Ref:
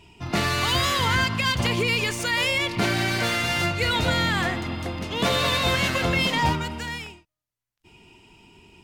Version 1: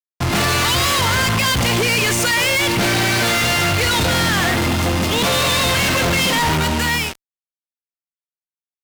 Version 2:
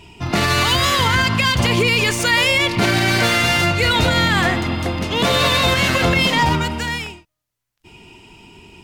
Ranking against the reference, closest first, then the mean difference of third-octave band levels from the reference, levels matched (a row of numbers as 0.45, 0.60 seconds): 2, 1; 1.0, 6.0 decibels